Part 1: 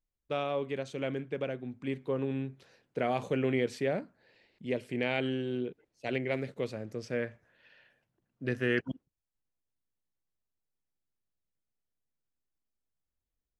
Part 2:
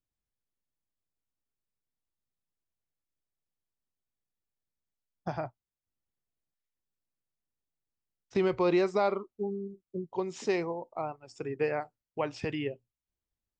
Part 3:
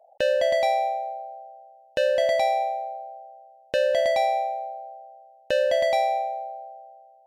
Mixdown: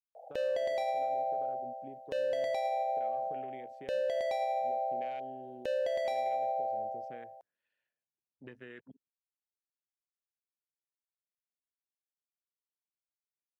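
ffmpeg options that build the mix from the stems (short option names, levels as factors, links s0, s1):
-filter_complex "[0:a]highpass=f=230:p=1,afwtdn=0.01,volume=0.376[s0];[2:a]equalizer=f=450:t=o:w=0.41:g=12,acompressor=threshold=0.0631:ratio=6,adelay=150,volume=1.41[s1];[s0]acompressor=threshold=0.00501:ratio=6,volume=1[s2];[s1][s2]amix=inputs=2:normalize=0,alimiter=level_in=1.19:limit=0.0631:level=0:latency=1:release=166,volume=0.841"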